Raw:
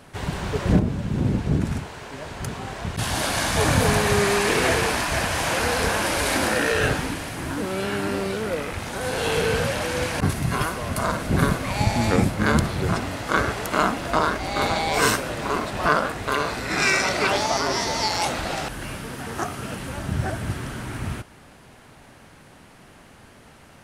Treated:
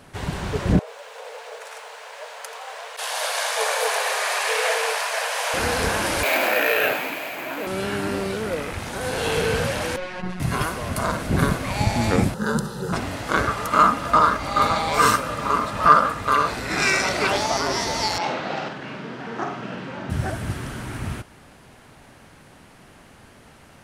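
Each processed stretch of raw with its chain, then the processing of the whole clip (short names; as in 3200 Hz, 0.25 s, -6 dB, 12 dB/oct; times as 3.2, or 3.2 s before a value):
0.79–5.54 Chebyshev high-pass 440 Hz, order 10 + lo-fi delay 84 ms, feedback 55%, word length 8-bit, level -14 dB
6.23–7.67 speaker cabinet 390–7300 Hz, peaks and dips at 640 Hz +8 dB, 2400 Hz +10 dB, 5600 Hz -8 dB + careless resampling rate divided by 3×, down none, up hold
9.96–10.4 LPF 3500 Hz + robotiser 182 Hz + ensemble effect
12.34–12.93 fixed phaser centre 450 Hz, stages 8 + notch comb 1100 Hz
13.47–16.47 bell 1200 Hz +14.5 dB 0.27 oct + notch comb 370 Hz
18.18–20.1 HPF 140 Hz 24 dB/oct + air absorption 190 m + flutter echo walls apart 8.2 m, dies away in 0.48 s
whole clip: dry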